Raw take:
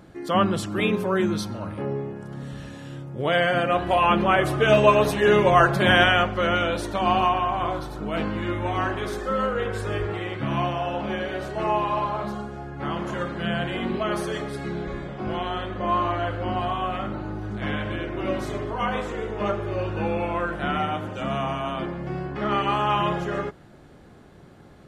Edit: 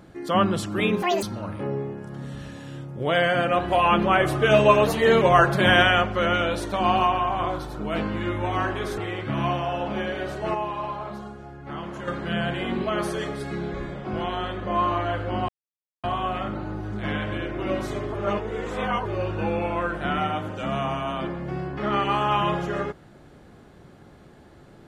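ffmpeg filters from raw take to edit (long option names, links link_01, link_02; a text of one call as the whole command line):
ffmpeg -i in.wav -filter_complex "[0:a]asplit=11[link_01][link_02][link_03][link_04][link_05][link_06][link_07][link_08][link_09][link_10][link_11];[link_01]atrim=end=1.024[link_12];[link_02]atrim=start=1.02:end=1.41,asetpts=PTS-STARTPTS,asetrate=83349,aresample=44100[link_13];[link_03]atrim=start=1.406:end=5.064[link_14];[link_04]atrim=start=5.06:end=5.43,asetpts=PTS-STARTPTS,asetrate=48069,aresample=44100[link_15];[link_05]atrim=start=5.426:end=9.192[link_16];[link_06]atrim=start=10.108:end=11.682[link_17];[link_07]atrim=start=11.678:end=13.212,asetpts=PTS-STARTPTS,volume=-5.5dB[link_18];[link_08]atrim=start=13.208:end=16.62,asetpts=PTS-STARTPTS,afade=type=out:start_time=3.408:duration=0.004:curve=hsin,apad=pad_dur=0.55[link_19];[link_09]atrim=start=16.62:end=18.732,asetpts=PTS-STARTPTS,afade=type=in:duration=0.004:curve=hsin[link_20];[link_10]atrim=start=18.728:end=19.642,asetpts=PTS-STARTPTS,areverse[link_21];[link_11]atrim=start=19.638[link_22];[link_12][link_13]acrossfade=duration=0.004:curve1=hsin:curve2=hsin[link_23];[link_23][link_14]acrossfade=duration=0.004:curve1=hsin:curve2=hsin[link_24];[link_24][link_15]acrossfade=duration=0.004:curve1=hsin:curve2=hsin[link_25];[link_25][link_16]acrossfade=duration=0.004:curve1=hsin:curve2=hsin[link_26];[link_26][link_17]acrossfade=duration=0.004:curve1=hsin:curve2=hsin[link_27];[link_27][link_18]acrossfade=duration=0.004:curve1=hsin:curve2=hsin[link_28];[link_19][link_20]concat=n=2:v=0:a=1[link_29];[link_28][link_29]acrossfade=duration=0.004:curve1=hsin:curve2=hsin[link_30];[link_30][link_21]acrossfade=duration=0.004:curve1=hsin:curve2=hsin[link_31];[link_31][link_22]acrossfade=duration=0.004:curve1=hsin:curve2=hsin" out.wav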